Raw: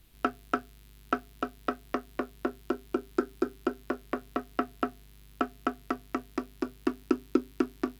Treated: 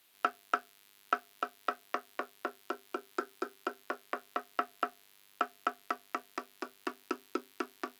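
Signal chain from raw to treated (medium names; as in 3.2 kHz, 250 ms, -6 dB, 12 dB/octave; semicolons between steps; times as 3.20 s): high-pass 640 Hz 12 dB/octave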